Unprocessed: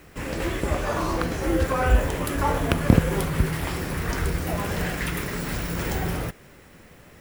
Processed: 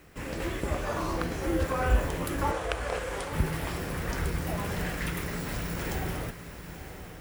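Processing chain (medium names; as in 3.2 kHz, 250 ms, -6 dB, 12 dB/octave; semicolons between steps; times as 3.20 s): 2.51–3.33 s: brick-wall FIR band-pass 400–10000 Hz; on a send: echo that smears into a reverb 934 ms, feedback 40%, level -10.5 dB; on the sum: trim -5.5 dB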